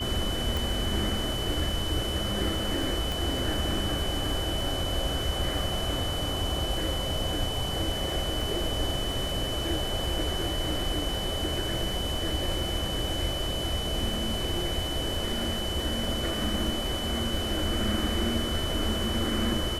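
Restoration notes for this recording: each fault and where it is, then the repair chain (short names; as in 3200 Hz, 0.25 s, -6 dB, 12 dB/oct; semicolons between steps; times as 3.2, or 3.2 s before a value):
crackle 41/s -36 dBFS
tone 3000 Hz -33 dBFS
0.57 pop
3.12 pop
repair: de-click; notch 3000 Hz, Q 30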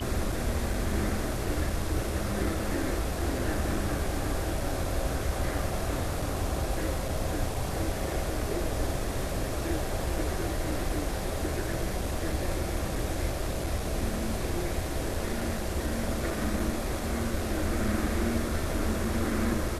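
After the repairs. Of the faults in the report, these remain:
3.12 pop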